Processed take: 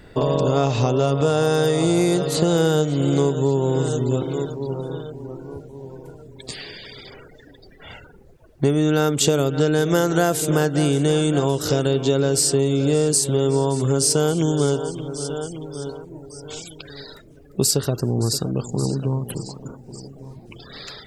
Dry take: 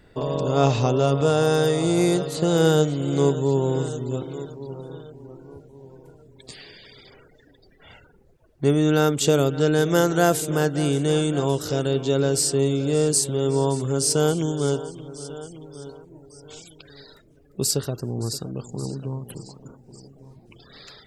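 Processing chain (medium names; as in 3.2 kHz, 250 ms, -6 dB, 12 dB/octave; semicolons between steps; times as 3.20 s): compression, threshold -23 dBFS, peak gain reduction 10.5 dB; trim +8 dB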